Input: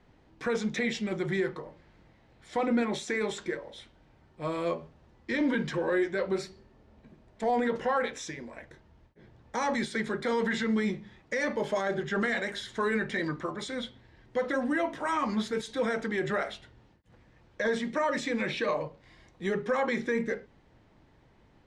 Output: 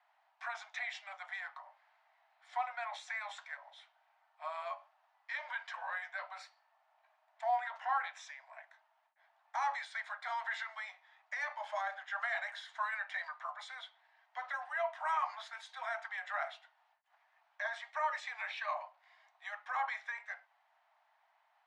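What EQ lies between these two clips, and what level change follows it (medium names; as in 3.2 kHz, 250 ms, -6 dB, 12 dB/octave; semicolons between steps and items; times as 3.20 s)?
steep high-pass 660 Hz 96 dB/octave; low-pass 1.5 kHz 6 dB/octave; -1.5 dB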